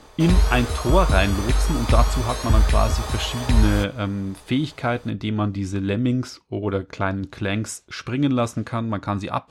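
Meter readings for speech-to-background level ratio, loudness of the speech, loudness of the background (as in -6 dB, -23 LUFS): -1.5 dB, -24.5 LUFS, -23.0 LUFS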